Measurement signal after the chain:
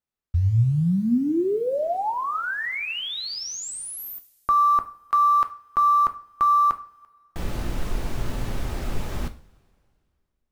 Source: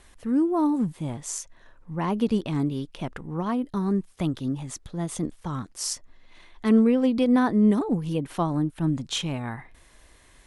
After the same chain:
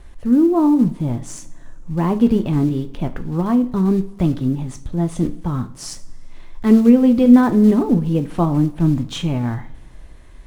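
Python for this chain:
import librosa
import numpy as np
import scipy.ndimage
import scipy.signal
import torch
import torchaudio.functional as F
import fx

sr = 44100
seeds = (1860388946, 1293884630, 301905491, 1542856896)

y = fx.block_float(x, sr, bits=5)
y = fx.tilt_eq(y, sr, slope=-2.5)
y = fx.rev_double_slope(y, sr, seeds[0], early_s=0.37, late_s=2.3, knee_db=-22, drr_db=7.5)
y = F.gain(torch.from_numpy(y), 3.5).numpy()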